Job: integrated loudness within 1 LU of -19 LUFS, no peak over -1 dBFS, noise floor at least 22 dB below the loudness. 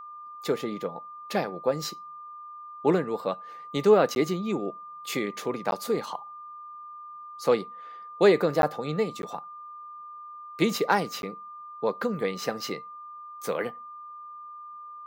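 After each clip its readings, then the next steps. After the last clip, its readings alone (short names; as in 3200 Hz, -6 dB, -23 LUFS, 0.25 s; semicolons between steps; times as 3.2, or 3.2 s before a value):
dropouts 5; longest dropout 11 ms; steady tone 1200 Hz; tone level -40 dBFS; loudness -28.0 LUFS; peak -8.5 dBFS; loudness target -19.0 LUFS
-> interpolate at 4.15/5.71/8.62/9.22/11.22, 11 ms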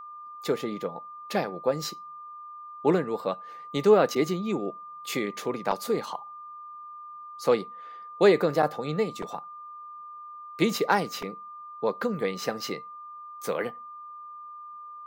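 dropouts 0; steady tone 1200 Hz; tone level -40 dBFS
-> notch 1200 Hz, Q 30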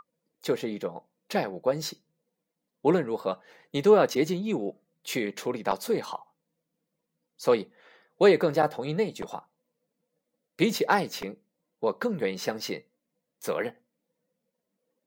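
steady tone none; loudness -27.5 LUFS; peak -8.5 dBFS; loudness target -19.0 LUFS
-> gain +8.5 dB; limiter -1 dBFS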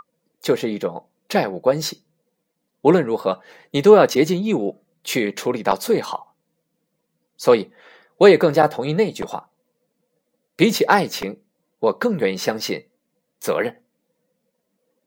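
loudness -19.5 LUFS; peak -1.0 dBFS; noise floor -75 dBFS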